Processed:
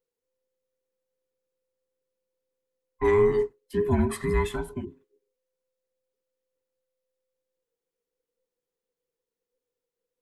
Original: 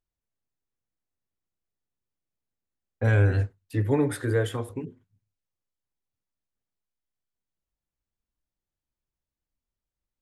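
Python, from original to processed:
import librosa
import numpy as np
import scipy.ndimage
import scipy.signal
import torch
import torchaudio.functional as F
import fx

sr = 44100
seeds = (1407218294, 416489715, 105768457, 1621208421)

y = fx.band_invert(x, sr, width_hz=500)
y = fx.dynamic_eq(y, sr, hz=3100.0, q=0.85, threshold_db=-45.0, ratio=4.0, max_db=-6, at=(3.1, 3.83))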